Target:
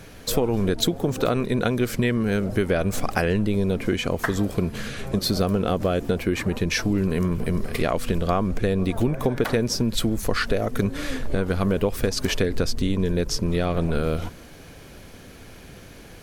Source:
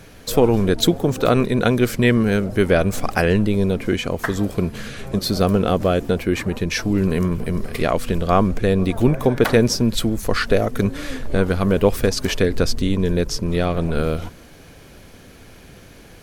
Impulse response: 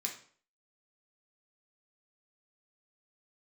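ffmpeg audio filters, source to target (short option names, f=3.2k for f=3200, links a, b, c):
-af "acompressor=threshold=-18dB:ratio=6"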